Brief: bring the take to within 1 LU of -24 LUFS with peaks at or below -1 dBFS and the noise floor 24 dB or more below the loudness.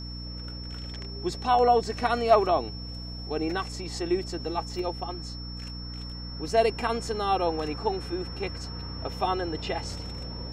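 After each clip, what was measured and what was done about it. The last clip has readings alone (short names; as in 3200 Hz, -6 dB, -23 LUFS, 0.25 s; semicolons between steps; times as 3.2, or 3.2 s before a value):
hum 60 Hz; harmonics up to 300 Hz; hum level -36 dBFS; steady tone 5400 Hz; tone level -41 dBFS; loudness -29.0 LUFS; peak -8.5 dBFS; loudness target -24.0 LUFS
-> notches 60/120/180/240/300 Hz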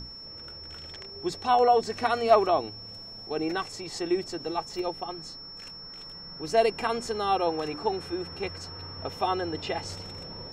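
hum none; steady tone 5400 Hz; tone level -41 dBFS
-> notch 5400 Hz, Q 30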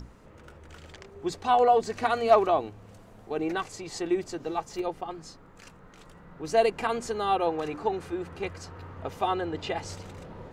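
steady tone none; loudness -28.0 LUFS; peak -8.5 dBFS; loudness target -24.0 LUFS
-> gain +4 dB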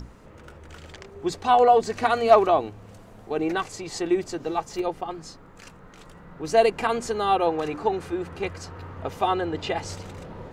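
loudness -24.0 LUFS; peak -4.5 dBFS; noise floor -48 dBFS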